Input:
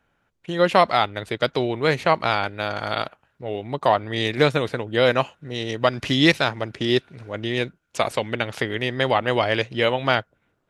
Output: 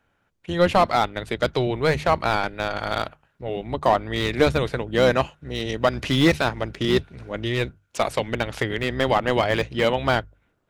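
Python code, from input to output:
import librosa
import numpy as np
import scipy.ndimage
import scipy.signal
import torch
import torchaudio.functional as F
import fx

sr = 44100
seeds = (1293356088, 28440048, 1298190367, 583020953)

y = fx.octave_divider(x, sr, octaves=1, level_db=-4.0)
y = fx.hum_notches(y, sr, base_hz=50, count=3)
y = fx.slew_limit(y, sr, full_power_hz=260.0)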